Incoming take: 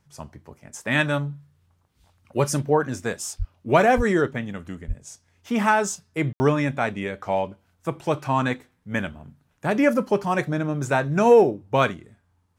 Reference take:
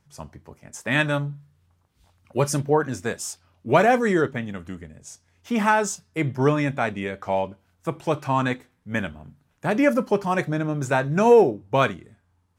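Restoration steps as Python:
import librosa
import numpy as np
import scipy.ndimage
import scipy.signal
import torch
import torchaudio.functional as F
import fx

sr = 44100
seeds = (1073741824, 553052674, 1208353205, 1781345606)

y = fx.highpass(x, sr, hz=140.0, slope=24, at=(3.38, 3.5), fade=0.02)
y = fx.highpass(y, sr, hz=140.0, slope=24, at=(3.96, 4.08), fade=0.02)
y = fx.highpass(y, sr, hz=140.0, slope=24, at=(4.87, 4.99), fade=0.02)
y = fx.fix_ambience(y, sr, seeds[0], print_start_s=1.5, print_end_s=2.0, start_s=6.33, end_s=6.4)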